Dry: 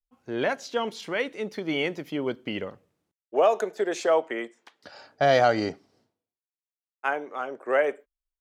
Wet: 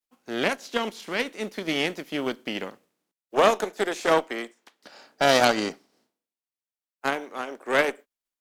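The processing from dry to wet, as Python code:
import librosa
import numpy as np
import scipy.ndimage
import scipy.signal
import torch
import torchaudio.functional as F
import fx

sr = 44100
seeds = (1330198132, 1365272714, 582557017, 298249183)

y = fx.spec_flatten(x, sr, power=0.67)
y = fx.cheby_harmonics(y, sr, harmonics=(2, 4, 7), levels_db=(-8, -9, -31), full_scale_db=-6.0)
y = fx.low_shelf_res(y, sr, hz=150.0, db=-11.5, q=1.5)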